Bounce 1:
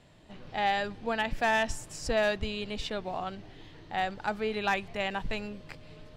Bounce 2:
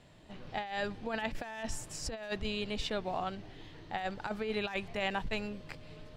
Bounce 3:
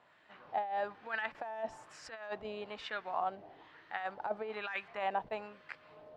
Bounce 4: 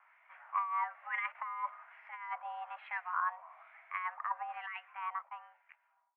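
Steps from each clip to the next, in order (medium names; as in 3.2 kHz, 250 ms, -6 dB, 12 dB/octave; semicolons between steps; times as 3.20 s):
compressor with a negative ratio -31 dBFS, ratio -0.5; trim -3 dB
wah-wah 1.1 Hz 670–1600 Hz, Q 2; trim +5 dB
fade out at the end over 2.04 s; mistuned SSB +350 Hz 300–2100 Hz; trim +1 dB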